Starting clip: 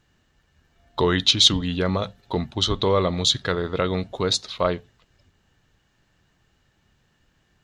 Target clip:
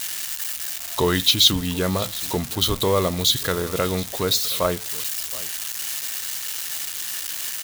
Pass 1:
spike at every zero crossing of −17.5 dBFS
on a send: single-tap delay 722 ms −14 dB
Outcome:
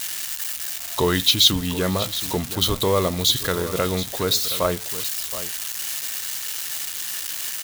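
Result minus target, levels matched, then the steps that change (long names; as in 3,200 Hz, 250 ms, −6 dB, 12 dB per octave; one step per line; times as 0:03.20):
echo-to-direct +6.5 dB
change: single-tap delay 722 ms −20.5 dB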